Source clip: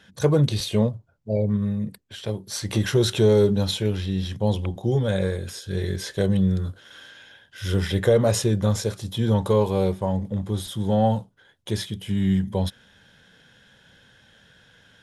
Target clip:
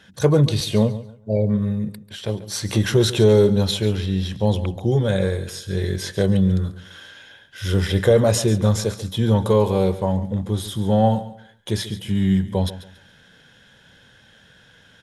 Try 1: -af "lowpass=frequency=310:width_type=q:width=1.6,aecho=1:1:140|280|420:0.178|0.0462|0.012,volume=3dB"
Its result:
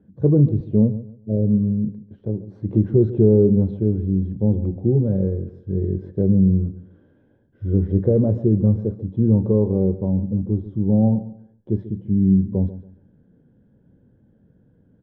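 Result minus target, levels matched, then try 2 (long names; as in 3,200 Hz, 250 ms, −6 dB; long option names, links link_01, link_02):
250 Hz band +2.5 dB
-af "aecho=1:1:140|280|420:0.178|0.0462|0.012,volume=3dB"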